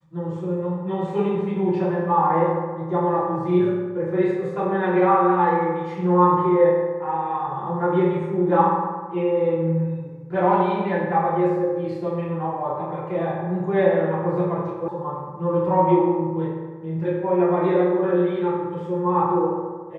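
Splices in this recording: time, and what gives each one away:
14.88 s: sound stops dead

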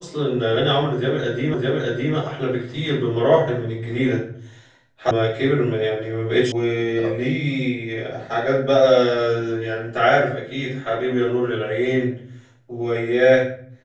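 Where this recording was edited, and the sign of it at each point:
1.54 s: repeat of the last 0.61 s
5.11 s: sound stops dead
6.52 s: sound stops dead

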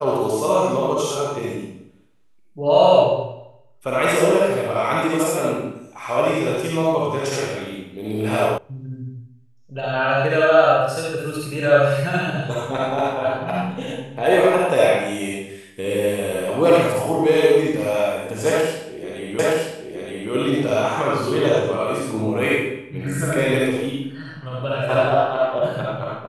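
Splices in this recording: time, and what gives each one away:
8.58 s: sound stops dead
19.39 s: repeat of the last 0.92 s

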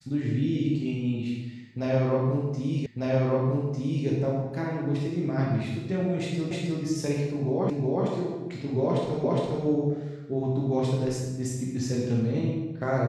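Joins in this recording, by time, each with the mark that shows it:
2.86 s: repeat of the last 1.2 s
6.51 s: repeat of the last 0.31 s
7.70 s: repeat of the last 0.37 s
9.24 s: repeat of the last 0.41 s

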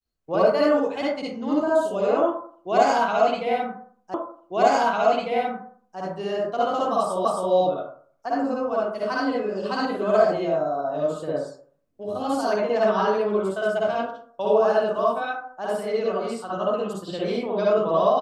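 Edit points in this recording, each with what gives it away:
4.14 s: repeat of the last 1.85 s
7.25 s: repeat of the last 0.27 s

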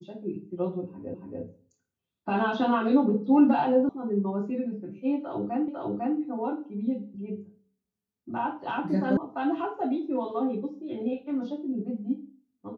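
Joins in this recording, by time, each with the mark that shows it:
1.14 s: repeat of the last 0.28 s
3.89 s: sound stops dead
5.68 s: repeat of the last 0.5 s
9.17 s: sound stops dead

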